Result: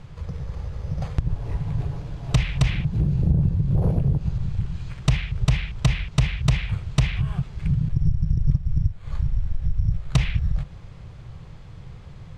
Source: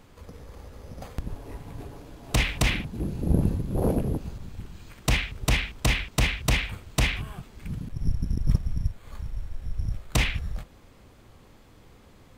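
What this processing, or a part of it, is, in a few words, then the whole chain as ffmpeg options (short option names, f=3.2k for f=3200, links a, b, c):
jukebox: -af "lowpass=5.8k,lowshelf=f=190:t=q:w=3:g=8,acompressor=threshold=-22dB:ratio=4,volume=4.5dB"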